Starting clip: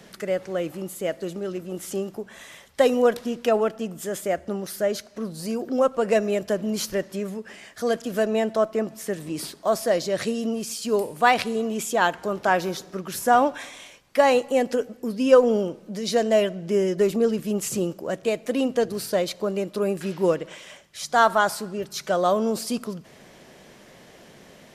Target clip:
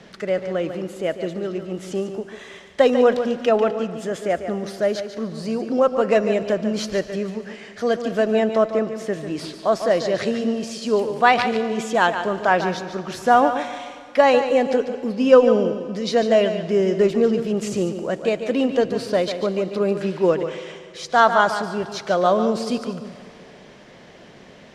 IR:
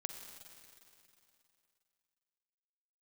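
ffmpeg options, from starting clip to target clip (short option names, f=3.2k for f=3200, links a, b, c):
-filter_complex "[0:a]lowpass=4.9k,asplit=2[a][b];[1:a]atrim=start_sample=2205,asetrate=52920,aresample=44100,adelay=145[c];[b][c]afir=irnorm=-1:irlink=0,volume=-5.5dB[d];[a][d]amix=inputs=2:normalize=0,volume=3dB"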